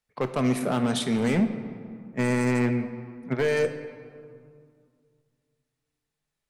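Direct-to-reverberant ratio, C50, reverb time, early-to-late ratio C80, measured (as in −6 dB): 8.0 dB, 10.0 dB, 2.2 s, 11.0 dB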